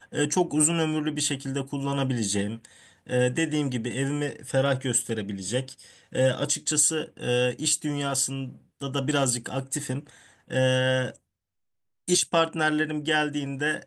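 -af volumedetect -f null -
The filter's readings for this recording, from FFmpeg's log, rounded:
mean_volume: -27.1 dB
max_volume: -8.2 dB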